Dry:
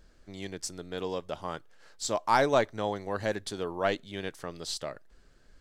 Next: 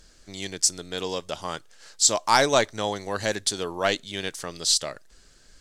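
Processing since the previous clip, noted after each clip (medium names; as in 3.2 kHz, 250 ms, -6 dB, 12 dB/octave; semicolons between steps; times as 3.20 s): peaking EQ 7.1 kHz +14.5 dB 2.4 oct; trim +2.5 dB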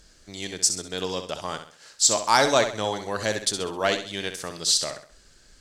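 Chebyshev shaper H 2 -24 dB, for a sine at -1 dBFS; flutter echo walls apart 11.2 m, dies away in 0.44 s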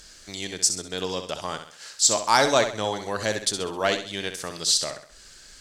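tape noise reduction on one side only encoder only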